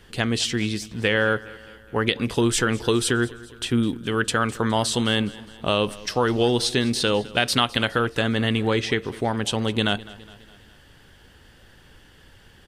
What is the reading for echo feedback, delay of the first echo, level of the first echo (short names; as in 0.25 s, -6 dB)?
55%, 0.207 s, -20.0 dB